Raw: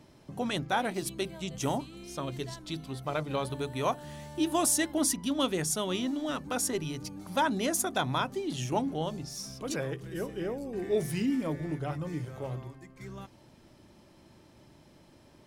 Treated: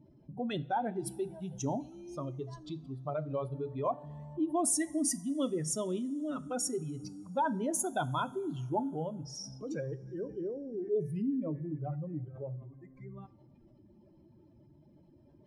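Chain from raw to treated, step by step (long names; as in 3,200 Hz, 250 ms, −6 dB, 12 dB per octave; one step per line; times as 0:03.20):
expanding power law on the bin magnitudes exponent 2.1
coupled-rooms reverb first 0.4 s, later 3.2 s, from −18 dB, DRR 14 dB
level −3 dB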